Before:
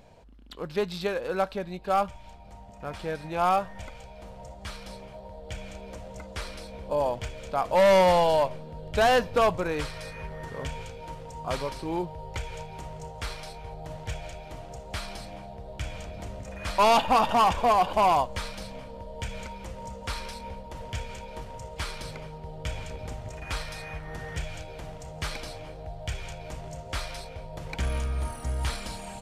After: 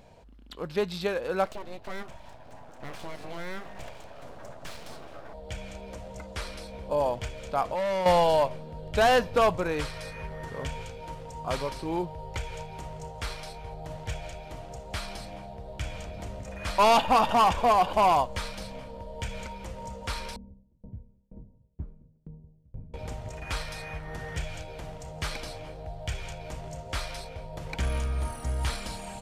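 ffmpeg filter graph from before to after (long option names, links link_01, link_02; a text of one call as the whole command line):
ffmpeg -i in.wav -filter_complex "[0:a]asettb=1/sr,asplit=3[link_01][link_02][link_03];[link_01]atrim=end=1.454[link_04];[link_02]atrim=start=1.45:end=5.34,asetpts=PTS-STARTPTS,afade=type=in:duration=0.004:curve=qsin,afade=type=out:start_time=3.886:duration=0.004:curve=qsin,aeval=exprs='abs(val(0))':channel_layout=same,equalizer=frequency=630:width_type=o:width=0.56:gain=6.5,acompressor=threshold=-32dB:ratio=5:attack=3.2:release=140:knee=1:detection=peak[link_05];[link_03]atrim=start=5.336[link_06];[link_04][link_05]acrossfade=duration=0.004:curve1=hsin:curve2=qsin[link_07];[link_07][link_06]acrossfade=duration=0.004:curve1=qsin:curve2=hsin,asettb=1/sr,asplit=3[link_08][link_09][link_10];[link_08]atrim=end=7.644[link_11];[link_09]atrim=start=7.64:end=8.06,asetpts=PTS-STARTPTS,afade=type=in:duration=0.004:curve=qsin,afade=type=out:start_time=0.416:duration=0.004:curve=qsin,highshelf=frequency=9300:gain=-6,acompressor=threshold=-28dB:ratio=5:attack=3.2:release=140:knee=1:detection=peak[link_12];[link_10]atrim=start=8.056[link_13];[link_11][link_12]acrossfade=duration=0.004:curve1=hsin:curve2=qsin[link_14];[link_14][link_13]acrossfade=duration=0.004:curve1=qsin:curve2=hsin,asettb=1/sr,asplit=3[link_15][link_16][link_17];[link_15]atrim=end=20.364[link_18];[link_16]atrim=start=20.36:end=22.94,asetpts=PTS-STARTPTS,afade=type=in:duration=0.004:curve=qsin,afade=type=out:start_time=2.576:duration=0.004:curve=qsin,lowpass=frequency=230:width_type=q:width=1.7,aeval=exprs='val(0)*pow(10,-33*if(lt(mod(2.1*n/s,1),2*abs(2.1)/1000),1-mod(2.1*n/s,1)/(2*abs(2.1)/1000),(mod(2.1*n/s,1)-2*abs(2.1)/1000)/(1-2*abs(2.1)/1000))/20)':channel_layout=same[link_19];[link_17]atrim=start=22.936[link_20];[link_18][link_19]acrossfade=duration=0.004:curve1=hsin:curve2=qsin[link_21];[link_21][link_20]acrossfade=duration=0.004:curve1=qsin:curve2=hsin" out.wav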